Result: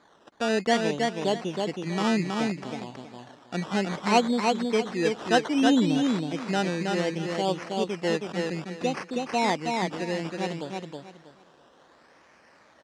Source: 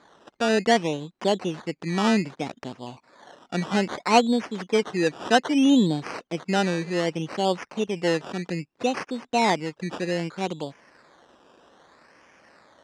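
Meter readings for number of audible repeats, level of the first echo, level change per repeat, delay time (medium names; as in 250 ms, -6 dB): 3, -3.5 dB, -12.5 dB, 321 ms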